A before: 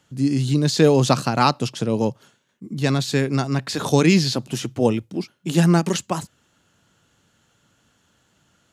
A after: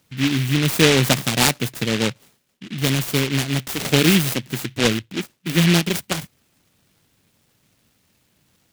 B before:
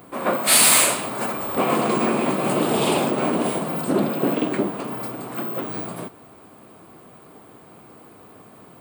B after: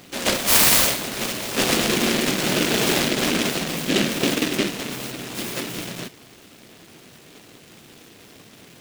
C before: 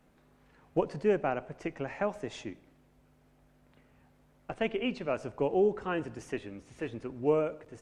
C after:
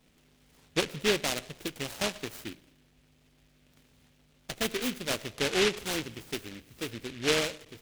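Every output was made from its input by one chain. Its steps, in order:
short delay modulated by noise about 2,500 Hz, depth 0.27 ms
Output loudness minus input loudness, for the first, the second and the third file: +1.0, 0.0, +1.5 LU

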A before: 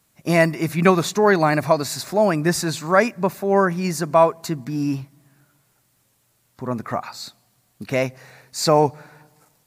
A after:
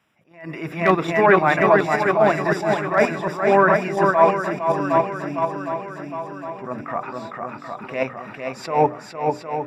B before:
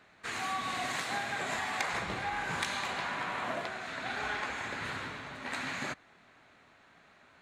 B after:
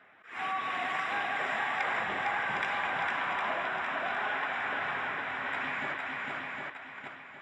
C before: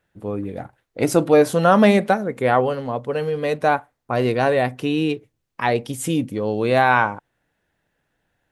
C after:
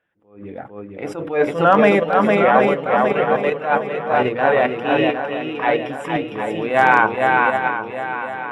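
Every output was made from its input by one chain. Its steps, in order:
spectral magnitudes quantised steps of 15 dB
high-pass filter 130 Hz 6 dB per octave
low-shelf EQ 330 Hz −7.5 dB
mains-hum notches 60/120/180/240/300/360/420/480/540/600 Hz
feedback echo with a long and a short gap by turns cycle 760 ms, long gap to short 1.5 to 1, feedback 50%, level −4 dB
in parallel at −1 dB: output level in coarse steps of 23 dB
on the sum: Savitzky-Golay smoothing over 25 samples
hard clipping −2.5 dBFS
level that may rise only so fast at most 130 dB per second
level +1 dB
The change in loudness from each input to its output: +0.5, +3.0, +2.0 LU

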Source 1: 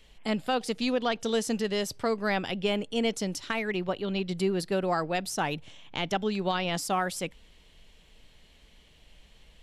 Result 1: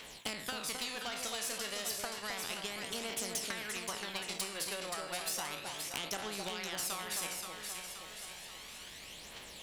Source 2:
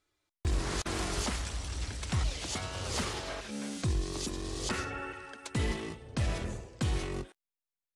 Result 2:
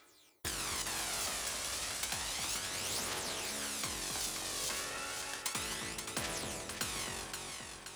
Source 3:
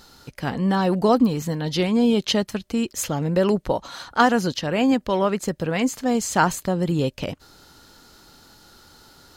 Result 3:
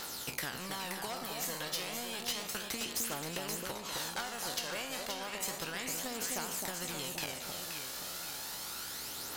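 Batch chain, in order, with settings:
peak hold with a decay on every bin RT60 0.38 s
high-pass filter 760 Hz 6 dB per octave
high-shelf EQ 10,000 Hz +6.5 dB
downward compressor 4 to 1, threshold −36 dBFS
transient designer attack +5 dB, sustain −3 dB
phase shifter 0.32 Hz, delay 1.9 ms, feedback 63%
soft clipping −23 dBFS
on a send: delay that swaps between a low-pass and a high-pass 263 ms, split 1,000 Hz, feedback 56%, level −5 dB
on the sum: every bin compressed towards the loudest bin 2 to 1
level +1 dB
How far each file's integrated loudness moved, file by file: −8.5, −1.5, −15.0 LU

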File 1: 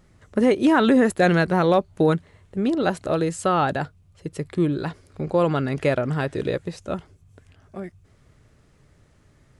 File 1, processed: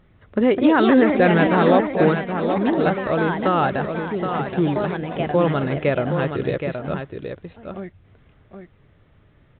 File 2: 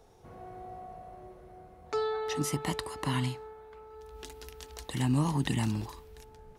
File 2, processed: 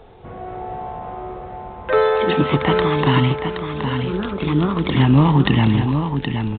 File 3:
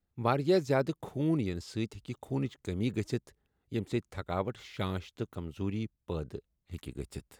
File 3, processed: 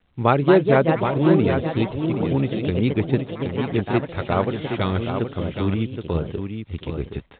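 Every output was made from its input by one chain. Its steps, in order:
delay with pitch and tempo change per echo 267 ms, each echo +3 semitones, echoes 3, each echo −6 dB
single-tap delay 772 ms −7 dB
mu-law 64 kbit/s 8,000 Hz
normalise the peak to −3 dBFS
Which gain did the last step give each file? +1.0, +14.5, +11.0 decibels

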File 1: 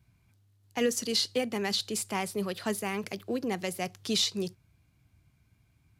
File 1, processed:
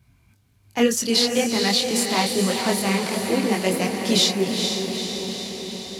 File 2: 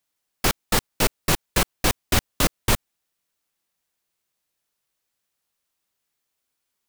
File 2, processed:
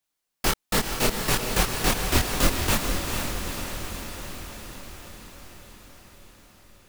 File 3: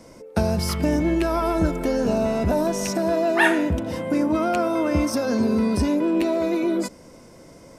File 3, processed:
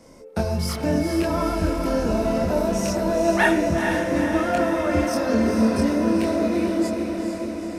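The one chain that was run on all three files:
multi-voice chorus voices 4, 1.1 Hz, delay 24 ms, depth 3 ms
feedback delay with all-pass diffusion 451 ms, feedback 67%, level −5 dB
normalise the peak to −6 dBFS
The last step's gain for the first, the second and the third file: +11.5, +0.5, +1.0 decibels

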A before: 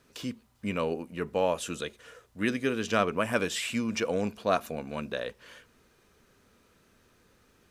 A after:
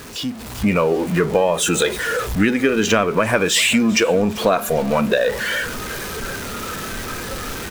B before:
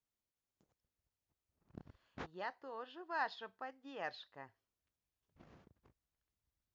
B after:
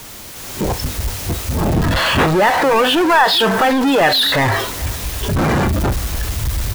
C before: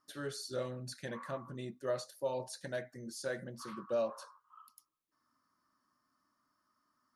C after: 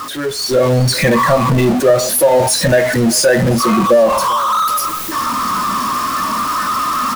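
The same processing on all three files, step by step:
converter with a step at zero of −32 dBFS
noise reduction from a noise print of the clip's start 9 dB
downward compressor 6 to 1, threshold −31 dBFS
repeating echo 394 ms, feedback 38%, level −20.5 dB
automatic gain control gain up to 8 dB
normalise the peak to −1.5 dBFS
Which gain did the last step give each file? +9.5, +15.5, +16.5 decibels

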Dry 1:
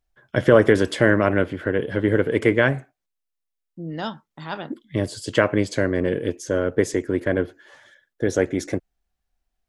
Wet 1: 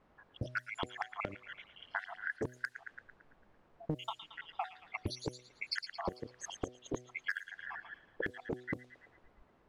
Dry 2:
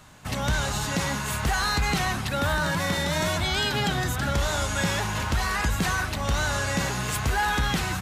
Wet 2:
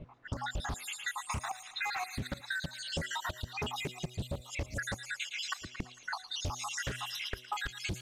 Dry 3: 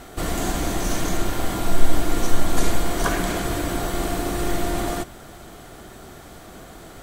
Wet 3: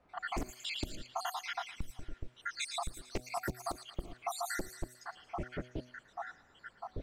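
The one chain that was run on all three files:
time-frequency cells dropped at random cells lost 84%
automatic gain control gain up to 8 dB
gate with flip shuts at −12 dBFS, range −26 dB
delay with a high-pass on its return 112 ms, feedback 59%, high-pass 2,900 Hz, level −6 dB
in parallel at −12 dB: bit-depth reduction 8 bits, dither triangular
on the sum: low-shelf EQ 440 Hz +4.5 dB
hard clipping −15 dBFS
low-pass that shuts in the quiet parts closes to 970 Hz, open at −22.5 dBFS
downward compressor 6 to 1, threshold −38 dBFS
hum removal 124.4 Hz, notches 6
highs frequency-modulated by the lows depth 0.43 ms
level +2.5 dB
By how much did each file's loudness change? −20.0, −12.0, −15.5 LU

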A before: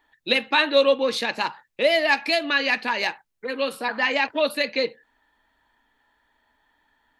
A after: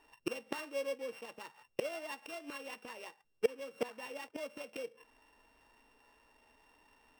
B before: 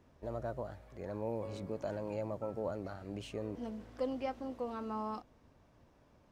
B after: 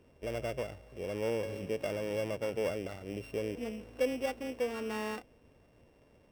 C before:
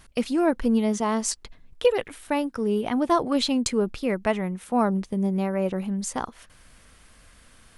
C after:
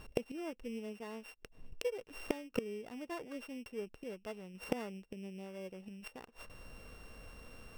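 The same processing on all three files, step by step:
samples sorted by size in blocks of 16 samples
high-shelf EQ 4,100 Hz −7.5 dB
gate with flip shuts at −23 dBFS, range −24 dB
parametric band 460 Hz +7.5 dB 0.65 octaves
level +1 dB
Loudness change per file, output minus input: −19.5, +4.5, −19.5 LU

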